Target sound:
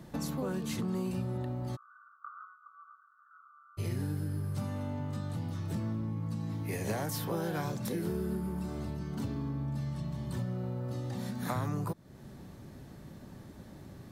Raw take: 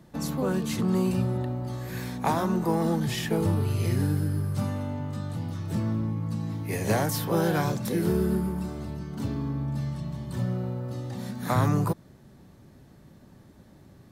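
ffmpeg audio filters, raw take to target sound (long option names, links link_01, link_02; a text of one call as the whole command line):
ffmpeg -i in.wav -filter_complex "[0:a]acompressor=threshold=-39dB:ratio=3,asplit=3[link_01][link_02][link_03];[link_01]afade=type=out:start_time=1.75:duration=0.02[link_04];[link_02]asuperpass=centerf=1300:order=12:qfactor=3.8,afade=type=in:start_time=1.75:duration=0.02,afade=type=out:start_time=3.77:duration=0.02[link_05];[link_03]afade=type=in:start_time=3.77:duration=0.02[link_06];[link_04][link_05][link_06]amix=inputs=3:normalize=0,volume=3.5dB" out.wav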